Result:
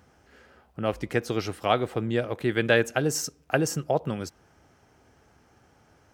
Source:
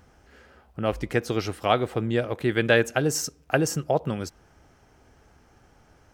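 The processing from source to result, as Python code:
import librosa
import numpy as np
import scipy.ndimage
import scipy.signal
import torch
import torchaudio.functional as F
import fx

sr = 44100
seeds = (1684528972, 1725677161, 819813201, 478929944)

y = scipy.signal.sosfilt(scipy.signal.butter(2, 76.0, 'highpass', fs=sr, output='sos'), x)
y = y * librosa.db_to_amplitude(-1.5)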